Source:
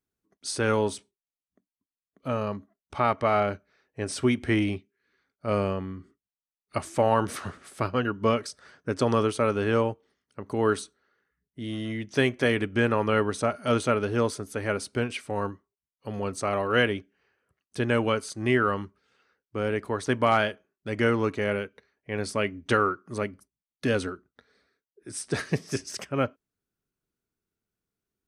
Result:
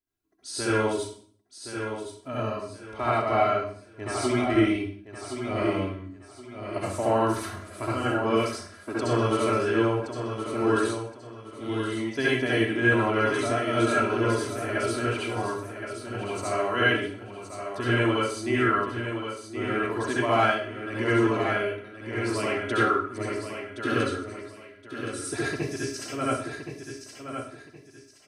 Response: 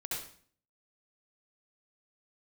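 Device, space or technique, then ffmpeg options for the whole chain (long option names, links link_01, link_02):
microphone above a desk: -filter_complex "[0:a]aecho=1:1:3:0.66[link_01];[1:a]atrim=start_sample=2205[link_02];[link_01][link_02]afir=irnorm=-1:irlink=0,aecho=1:1:1070|2140|3210:0.398|0.115|0.0335,volume=-2.5dB"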